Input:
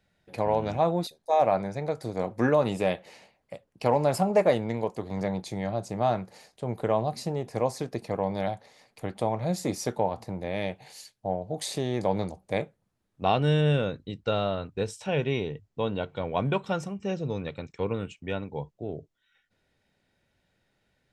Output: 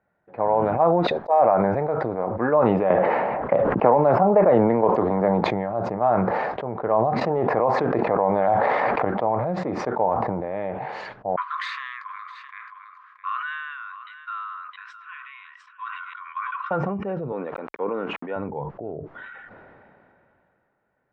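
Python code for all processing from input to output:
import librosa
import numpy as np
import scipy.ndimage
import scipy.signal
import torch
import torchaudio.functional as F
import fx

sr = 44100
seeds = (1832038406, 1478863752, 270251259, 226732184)

y = fx.chain(x, sr, fx.peak_eq(hz=310.0, db=3.0, octaves=2.9),
    fx.band_squash(depth_pct=100), at=(2.9, 5.41))
y = fx.chain(y, sr, fx.low_shelf(hz=250.0, db=-5.5),
    fx.env_flatten(amount_pct=100), at=(7.21, 9.05))
y = fx.chain(y, sr, fx.brickwall_highpass(low_hz=1000.0),
    fx.echo_single(ms=664, db=-17.0), at=(11.36, 16.71))
y = fx.chain(y, sr, fx.highpass(hz=220.0, slope=24),
    fx.sample_gate(floor_db=-51.5), at=(17.32, 18.36))
y = scipy.signal.sosfilt(scipy.signal.butter(4, 1300.0, 'lowpass', fs=sr, output='sos'), y)
y = fx.tilt_eq(y, sr, slope=4.0)
y = fx.sustainer(y, sr, db_per_s=22.0)
y = y * 10.0 ** (6.5 / 20.0)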